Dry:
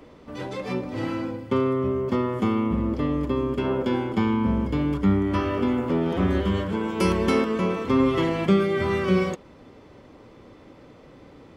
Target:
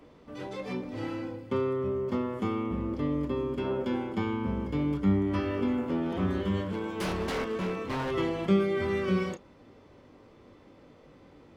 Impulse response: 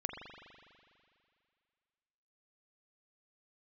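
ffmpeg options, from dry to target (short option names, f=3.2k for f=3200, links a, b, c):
-filter_complex "[0:a]asettb=1/sr,asplit=3[a][b][c];[a]atrim=end=6.664[d];[b]atrim=start=6.66:end=8.11,asetpts=PTS-STARTPTS,afade=t=in:d=0.004:c=qsin,afade=t=out:st=1.446:d=0.004:c=qsin,aeval=exprs='0.112*(abs(mod(val(0)/0.112+3,4)-2)-1)':c=same[e];[c]atrim=start=8.106[f];[d][e]acrossfade=d=0.004:c1=hsin:c2=qsin[g];[g][f]acrossfade=d=0.004:c1=qsin:c2=hsin[h];[1:a]atrim=start_sample=2205,atrim=end_sample=3087,asetrate=88200,aresample=44100[i];[h][i]afir=irnorm=-1:irlink=0"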